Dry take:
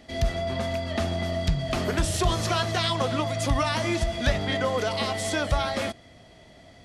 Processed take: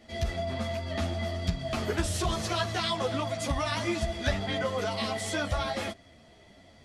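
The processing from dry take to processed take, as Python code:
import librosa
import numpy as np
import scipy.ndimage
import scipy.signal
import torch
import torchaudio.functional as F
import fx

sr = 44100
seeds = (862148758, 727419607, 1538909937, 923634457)

y = fx.ensemble(x, sr)
y = y * librosa.db_to_amplitude(-1.0)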